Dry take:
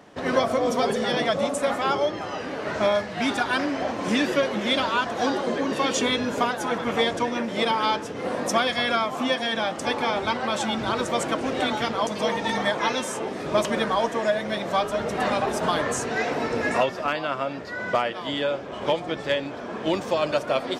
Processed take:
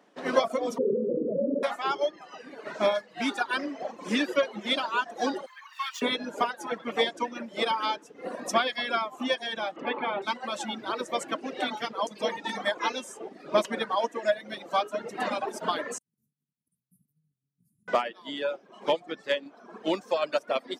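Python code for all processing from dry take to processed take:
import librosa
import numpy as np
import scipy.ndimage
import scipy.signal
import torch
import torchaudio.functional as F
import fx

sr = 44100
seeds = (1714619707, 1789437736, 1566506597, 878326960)

y = fx.chain(x, sr, fx.steep_lowpass(hz=560.0, slope=96),
    fx.peak_eq(hz=400.0, db=4.0, octaves=0.92),
    fx.env_flatten(amount_pct=100), at=(0.78, 1.63))
y = fx.chain(y, sr, fx.median_filter(points=5),
    fx.steep_highpass(hz=940.0, slope=48),
    fx.high_shelf(hz=8100.0, db=-4.5), at=(5.46, 6.02))
y = fx.chain(y, sr, fx.lowpass(hz=3200.0, slope=24),
    fx.env_flatten(amount_pct=50), at=(9.76, 10.22))
y = fx.chain(y, sr, fx.cheby1_bandstop(low_hz=150.0, high_hz=9900.0, order=4),
    fx.over_compress(threshold_db=-50.0, ratio=-0.5), at=(15.98, 17.88))
y = scipy.signal.sosfilt(scipy.signal.butter(4, 190.0, 'highpass', fs=sr, output='sos'), y)
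y = fx.dereverb_blind(y, sr, rt60_s=1.9)
y = fx.upward_expand(y, sr, threshold_db=-39.0, expansion=1.5)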